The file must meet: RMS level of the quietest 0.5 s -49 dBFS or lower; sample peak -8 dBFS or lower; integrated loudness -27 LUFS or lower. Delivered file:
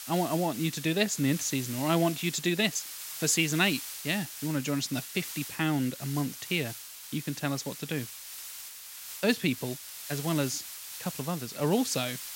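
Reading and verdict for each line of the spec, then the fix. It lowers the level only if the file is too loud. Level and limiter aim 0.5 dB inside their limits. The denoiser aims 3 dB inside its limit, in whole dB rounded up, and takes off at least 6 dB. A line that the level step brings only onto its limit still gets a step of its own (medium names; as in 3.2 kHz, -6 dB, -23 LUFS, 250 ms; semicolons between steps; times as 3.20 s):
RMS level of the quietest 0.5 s -44 dBFS: fail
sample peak -10.5 dBFS: pass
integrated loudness -30.0 LUFS: pass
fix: noise reduction 8 dB, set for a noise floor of -44 dBFS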